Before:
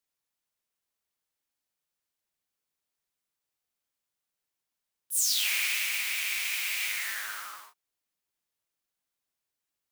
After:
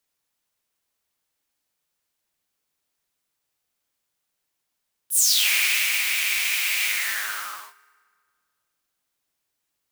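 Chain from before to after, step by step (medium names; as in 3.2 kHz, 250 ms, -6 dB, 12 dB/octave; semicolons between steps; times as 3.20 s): FDN reverb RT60 2 s, low-frequency decay 0.85×, high-frequency decay 0.65×, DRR 17 dB; trim +7.5 dB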